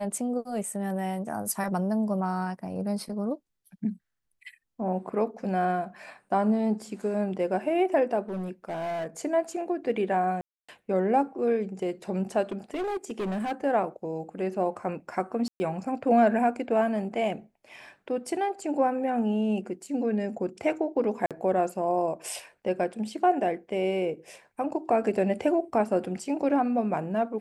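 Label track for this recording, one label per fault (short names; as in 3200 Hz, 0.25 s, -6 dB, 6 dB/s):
8.200000	9.070000	clipped -28.5 dBFS
10.410000	10.690000	gap 0.275 s
12.510000	13.530000	clipped -27 dBFS
15.480000	15.600000	gap 0.12 s
21.260000	21.310000	gap 47 ms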